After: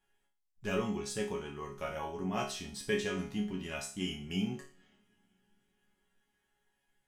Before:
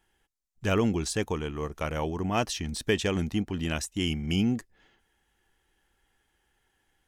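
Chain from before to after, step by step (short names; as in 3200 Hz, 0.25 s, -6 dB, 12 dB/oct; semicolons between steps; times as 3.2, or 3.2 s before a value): resonator bank C#3 sus4, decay 0.4 s; two-slope reverb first 0.42 s, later 4.6 s, from -21 dB, DRR 19.5 dB; gain +9 dB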